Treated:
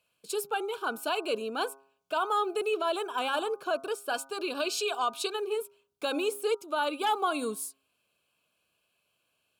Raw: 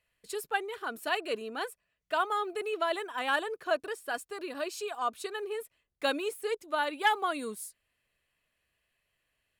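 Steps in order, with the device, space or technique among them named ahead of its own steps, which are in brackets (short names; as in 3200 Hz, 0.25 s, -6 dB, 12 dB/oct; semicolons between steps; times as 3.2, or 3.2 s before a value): 4.13–5.35 dynamic EQ 3500 Hz, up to +7 dB, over -51 dBFS, Q 0.71; PA system with an anti-feedback notch (HPF 150 Hz 12 dB/oct; Butterworth band-stop 1900 Hz, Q 2.7; limiter -24 dBFS, peak gain reduction 8 dB); de-hum 135.6 Hz, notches 11; gain +5 dB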